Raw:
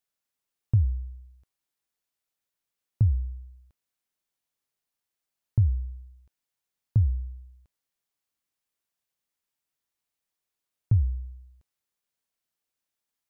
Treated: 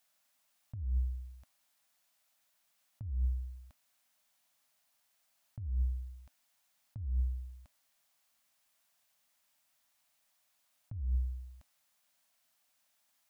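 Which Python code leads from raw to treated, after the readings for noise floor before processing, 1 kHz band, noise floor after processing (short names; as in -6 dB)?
under -85 dBFS, n/a, -76 dBFS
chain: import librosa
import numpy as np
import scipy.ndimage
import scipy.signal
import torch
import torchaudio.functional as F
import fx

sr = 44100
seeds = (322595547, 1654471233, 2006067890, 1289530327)

y = fx.curve_eq(x, sr, hz=(160.0, 260.0, 410.0, 600.0, 920.0), db=(0, 5, -15, 10, 8))
y = fx.over_compress(y, sr, threshold_db=-31.0, ratio=-1.0)
y = F.gain(torch.from_numpy(y), -3.0).numpy()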